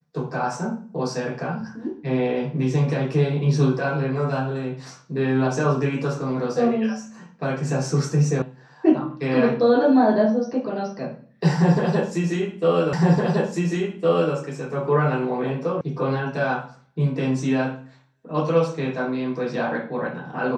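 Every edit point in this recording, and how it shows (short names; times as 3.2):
8.42 sound cut off
12.93 repeat of the last 1.41 s
15.81 sound cut off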